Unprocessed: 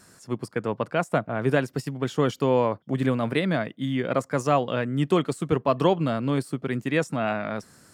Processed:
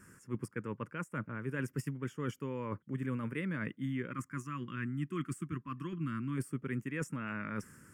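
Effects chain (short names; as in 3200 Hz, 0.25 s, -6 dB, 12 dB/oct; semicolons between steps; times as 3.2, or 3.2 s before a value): reverse; compressor 6:1, threshold -31 dBFS, peak gain reduction 15.5 dB; reverse; fixed phaser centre 1700 Hz, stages 4; spectral gain 4.11–6.37, 380–970 Hz -18 dB; mismatched tape noise reduction decoder only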